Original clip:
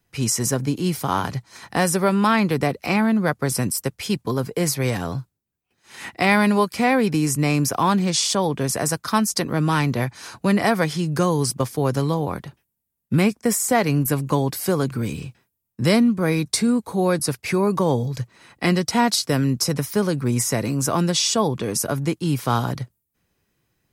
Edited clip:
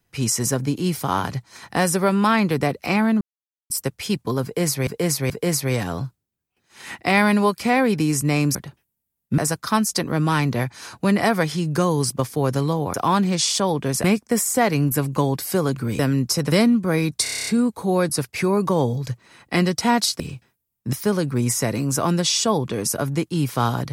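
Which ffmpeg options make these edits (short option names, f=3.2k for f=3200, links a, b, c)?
-filter_complex "[0:a]asplit=21[a][b][c][d][e][f][g][h][i][j][k][l][m][n][o][p][q][r][s][t][u];[a]atrim=end=3.21,asetpts=PTS-STARTPTS,afade=t=out:st=3.206:d=0.004:c=hsin[v];[b]atrim=start=3.21:end=3.7,asetpts=PTS-STARTPTS,volume=0[w];[c]atrim=start=3.7:end=4.872,asetpts=PTS-STARTPTS,afade=t=in:d=0.004:c=hsin[x];[d]atrim=start=4.438:end=4.872[y];[e]atrim=start=4.438:end=7.692[z];[f]atrim=start=12.348:end=13.182[aa];[g]atrim=start=8.788:end=12.352[ab];[h]atrim=start=7.688:end=8.792[ac];[i]atrim=start=13.178:end=15.132[ad];[j]atrim=start=19.298:end=19.832[ae];[k]atrim=start=15.858:end=16.602[af];[l]atrim=start=16.568:end=16.602[ag];[m]atrim=start=16.568:end=16.602[ah];[n]atrim=start=16.568:end=16.602[ai];[o]atrim=start=16.568:end=16.602[aj];[p]atrim=start=16.568:end=16.602[ak];[q]atrim=start=16.568:end=16.602[al];[r]atrim=start=16.568:end=16.602[am];[s]atrim=start=16.568:end=19.302[an];[t]atrim=start=15.128:end=15.862[ao];[u]atrim=start=19.828[ap];[v][w][x]concat=n=3:v=0:a=1[aq];[aq][y]acrossfade=d=0.004:c1=hsin:c2=hsin[ar];[ar][z]acrossfade=d=0.004:c1=hsin:c2=hsin[as];[as][aa]acrossfade=d=0.004:c1=hsin:c2=hsin[at];[at][ab]acrossfade=d=0.004:c1=hsin:c2=hsin[au];[au][ac]acrossfade=d=0.004:c1=hsin:c2=hsin[av];[av][ad]acrossfade=d=0.004:c1=hsin:c2=hsin[aw];[aw][ae]acrossfade=d=0.004:c1=hsin:c2=hsin[ax];[ax][af]acrossfade=d=0.004:c1=hsin:c2=hsin[ay];[ay][ag]acrossfade=d=0.004:c1=hsin:c2=hsin[az];[az][ah]acrossfade=d=0.004:c1=hsin:c2=hsin[ba];[ba][ai]acrossfade=d=0.004:c1=hsin:c2=hsin[bb];[bb][aj]acrossfade=d=0.004:c1=hsin:c2=hsin[bc];[bc][ak]acrossfade=d=0.004:c1=hsin:c2=hsin[bd];[bd][al]acrossfade=d=0.004:c1=hsin:c2=hsin[be];[be][am]acrossfade=d=0.004:c1=hsin:c2=hsin[bf];[bf][an]acrossfade=d=0.004:c1=hsin:c2=hsin[bg];[bg][ao]acrossfade=d=0.004:c1=hsin:c2=hsin[bh];[bh][ap]acrossfade=d=0.004:c1=hsin:c2=hsin"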